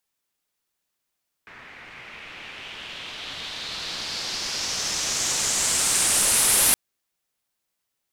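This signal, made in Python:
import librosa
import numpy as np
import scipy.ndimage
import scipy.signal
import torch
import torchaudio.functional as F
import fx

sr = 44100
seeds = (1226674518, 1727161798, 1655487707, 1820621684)

y = fx.riser_noise(sr, seeds[0], length_s=5.27, colour='white', kind='lowpass', start_hz=1900.0, end_hz=11000.0, q=2.7, swell_db=21.0, law='exponential')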